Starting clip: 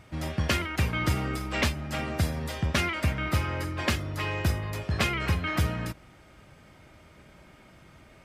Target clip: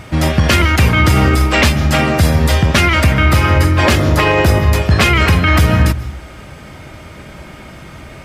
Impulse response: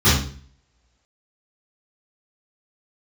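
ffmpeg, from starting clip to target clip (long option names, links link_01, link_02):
-filter_complex "[0:a]asettb=1/sr,asplit=3[link_01][link_02][link_03];[link_01]atrim=end=3.834[link_04];[link_02]atrim=start=3.83:end=4.59,asetpts=PTS-STARTPTS,afade=type=in:duration=0.004:curve=qsin,afade=type=out:start_time=0.756:duration=0.004:curve=qsin,equalizer=frequency=530:width=0.62:gain=6[link_05];[link_03]atrim=start=4.586[link_06];[link_04][link_05]acrossfade=duration=0.004:curve1=hsin:curve2=qsin[link_07];[link_07][link_06]acrossfade=duration=0.004:curve1=qsin:curve2=hsin,asplit=2[link_08][link_09];[1:a]atrim=start_sample=2205,highshelf=frequency=5300:gain=11,adelay=122[link_10];[link_09][link_10]afir=irnorm=-1:irlink=0,volume=-44.5dB[link_11];[link_08][link_11]amix=inputs=2:normalize=0,alimiter=level_in=20dB:limit=-1dB:release=50:level=0:latency=1,volume=-1dB"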